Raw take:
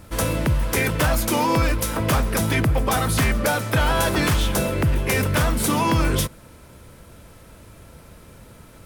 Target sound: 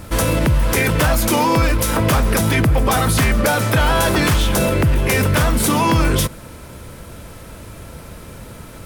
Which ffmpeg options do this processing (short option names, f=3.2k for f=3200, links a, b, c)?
-af "alimiter=level_in=17dB:limit=-1dB:release=50:level=0:latency=1,volume=-7.5dB"